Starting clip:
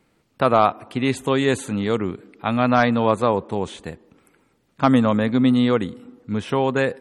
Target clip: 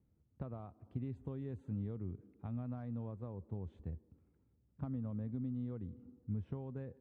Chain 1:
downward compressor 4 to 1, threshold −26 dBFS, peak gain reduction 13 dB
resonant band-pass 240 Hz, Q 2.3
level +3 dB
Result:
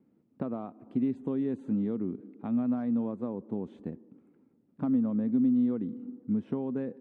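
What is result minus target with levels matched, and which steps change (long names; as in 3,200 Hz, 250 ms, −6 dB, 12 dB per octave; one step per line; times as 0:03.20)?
125 Hz band −12.5 dB
change: resonant band-pass 73 Hz, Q 2.3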